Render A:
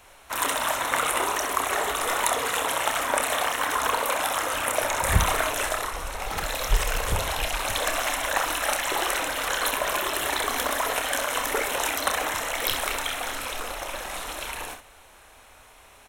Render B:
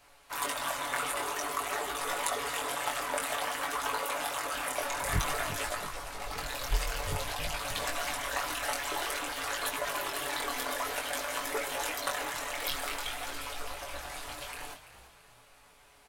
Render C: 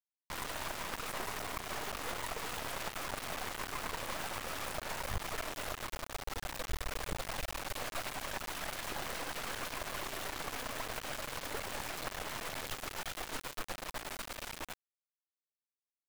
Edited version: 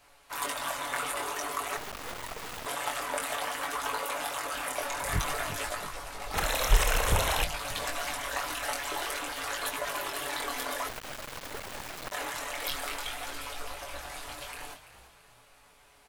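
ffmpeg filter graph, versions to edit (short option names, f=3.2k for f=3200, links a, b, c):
-filter_complex "[2:a]asplit=2[a][b];[1:a]asplit=4[c][d][e][f];[c]atrim=end=1.772[g];[a]atrim=start=1.768:end=2.662[h];[d]atrim=start=2.658:end=6.342[i];[0:a]atrim=start=6.338:end=7.442[j];[e]atrim=start=7.438:end=10.892[k];[b]atrim=start=10.888:end=12.122[l];[f]atrim=start=12.118[m];[g][h]acrossfade=d=0.004:c1=hsin:c2=hsin[n];[n][i]acrossfade=d=0.004:c1=hsin:c2=hsin[o];[o][j]acrossfade=d=0.004:c1=hsin:c2=hsin[p];[p][k]acrossfade=d=0.004:c1=hsin:c2=hsin[q];[q][l]acrossfade=d=0.004:c1=hsin:c2=hsin[r];[r][m]acrossfade=d=0.004:c1=hsin:c2=hsin"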